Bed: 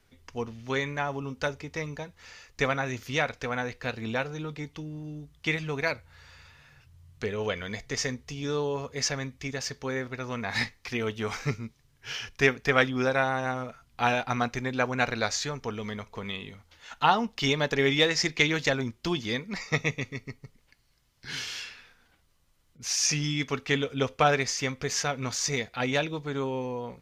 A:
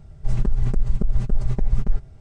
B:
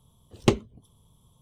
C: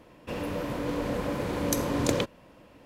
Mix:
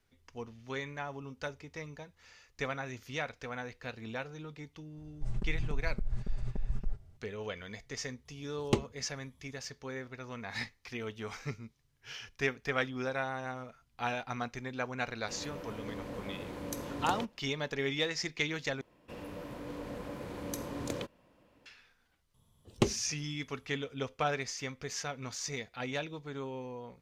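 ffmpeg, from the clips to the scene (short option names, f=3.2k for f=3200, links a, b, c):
-filter_complex "[2:a]asplit=2[a][b];[3:a]asplit=2[c][d];[0:a]volume=-9.5dB,asplit=2[e][f];[e]atrim=end=18.814[g];[d]atrim=end=2.85,asetpts=PTS-STARTPTS,volume=-11.5dB[h];[f]atrim=start=21.656[i];[1:a]atrim=end=2.2,asetpts=PTS-STARTPTS,volume=-14dB,afade=t=in:d=0.004:c=hsin,afade=t=out:st=2.196:d=0.004:c=hsin,adelay=219177S[j];[a]atrim=end=1.41,asetpts=PTS-STARTPTS,volume=-8.5dB,afade=t=in:d=0.004:c=hsin,afade=t=out:st=1.406:d=0.004:c=hsin,adelay=8250[k];[c]atrim=end=2.85,asetpts=PTS-STARTPTS,volume=-12dB,afade=t=in:d=0.004:c=hsin,afade=t=out:st=2.846:d=0.004:c=hsin,adelay=15000[l];[b]atrim=end=1.41,asetpts=PTS-STARTPTS,volume=-7.5dB,afade=t=in:d=0.004:c=hsin,afade=t=out:st=1.406:d=0.004:c=hsin,adelay=22340[m];[g][h]acrossfade=d=0.004:c1=hsin:c2=hsin[n];[n][i]acrossfade=d=0.004:c1=hsin:c2=hsin[o];[o][j][k][l][m]amix=inputs=5:normalize=0"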